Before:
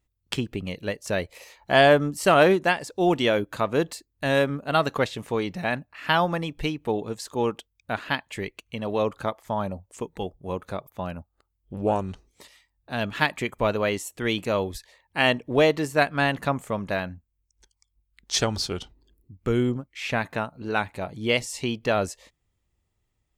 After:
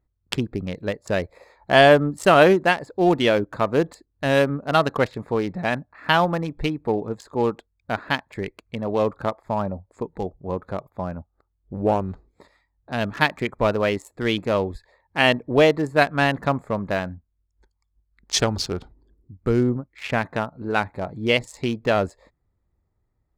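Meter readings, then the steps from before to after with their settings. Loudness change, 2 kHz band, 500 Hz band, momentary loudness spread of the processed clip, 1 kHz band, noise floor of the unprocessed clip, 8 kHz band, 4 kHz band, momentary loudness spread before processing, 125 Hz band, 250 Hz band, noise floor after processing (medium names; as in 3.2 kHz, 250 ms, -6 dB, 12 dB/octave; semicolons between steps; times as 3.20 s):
+3.0 dB, +2.5 dB, +3.5 dB, 13 LU, +3.0 dB, -76 dBFS, 0.0 dB, +2.0 dB, 13 LU, +3.5 dB, +3.5 dB, -73 dBFS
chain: local Wiener filter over 15 samples; trim +3.5 dB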